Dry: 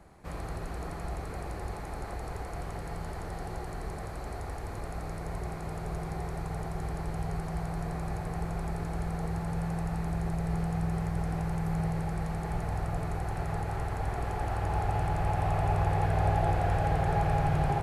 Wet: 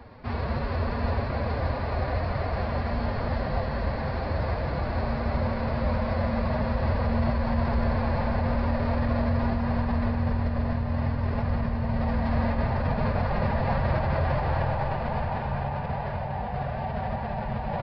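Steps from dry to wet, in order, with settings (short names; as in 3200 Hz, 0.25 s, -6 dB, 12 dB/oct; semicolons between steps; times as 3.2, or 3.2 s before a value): negative-ratio compressor -33 dBFS, ratio -1; formant-preserving pitch shift +6 st; on a send at -5 dB: reverb RT60 5.7 s, pre-delay 0.11 s; on the sum: downsampling 11025 Hz; gain +6.5 dB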